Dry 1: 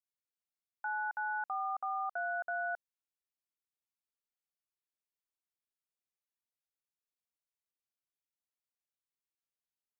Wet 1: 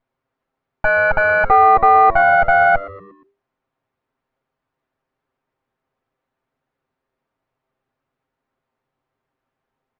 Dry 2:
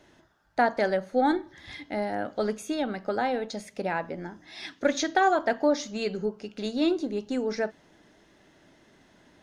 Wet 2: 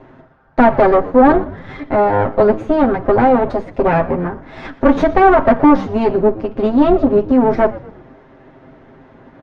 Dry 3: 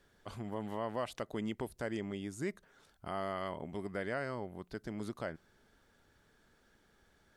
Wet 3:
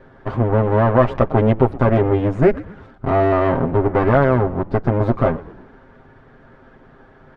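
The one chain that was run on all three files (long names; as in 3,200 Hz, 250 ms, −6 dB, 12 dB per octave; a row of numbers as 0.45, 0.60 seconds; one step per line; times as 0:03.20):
lower of the sound and its delayed copy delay 7.6 ms
soft clipping −21 dBFS
low-pass filter 1,200 Hz 12 dB per octave
echo with shifted repeats 118 ms, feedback 46%, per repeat −100 Hz, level −18 dB
normalise the peak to −1.5 dBFS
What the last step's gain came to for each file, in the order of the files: +28.5, +19.0, +26.0 decibels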